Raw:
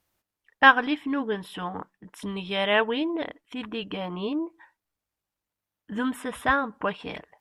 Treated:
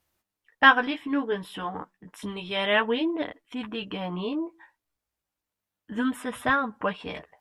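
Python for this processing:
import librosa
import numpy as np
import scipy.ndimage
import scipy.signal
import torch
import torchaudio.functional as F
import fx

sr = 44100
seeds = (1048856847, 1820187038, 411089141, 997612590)

y = fx.chorus_voices(x, sr, voices=2, hz=0.31, base_ms=13, depth_ms=5.0, mix_pct=35)
y = y * librosa.db_to_amplitude(2.5)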